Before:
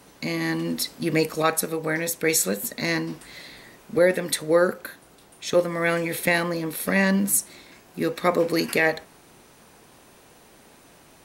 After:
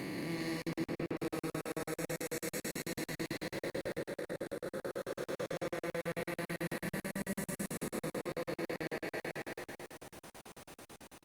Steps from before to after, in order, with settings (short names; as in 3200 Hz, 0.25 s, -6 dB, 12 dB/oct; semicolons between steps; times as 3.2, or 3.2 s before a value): time blur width 0.739 s; 0.68–1.17 LPF 2800 Hz 24 dB/oct; compressor 6:1, threshold -37 dBFS, peak gain reduction 12.5 dB; 3.99–4.66 ring modulator 31 Hz; bouncing-ball echo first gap 0.18 s, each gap 0.75×, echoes 5; digital reverb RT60 3.9 s, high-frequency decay 0.35×, pre-delay 95 ms, DRR 12 dB; crackling interface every 0.11 s, samples 2048, zero, from 0.62; Opus 32 kbps 48000 Hz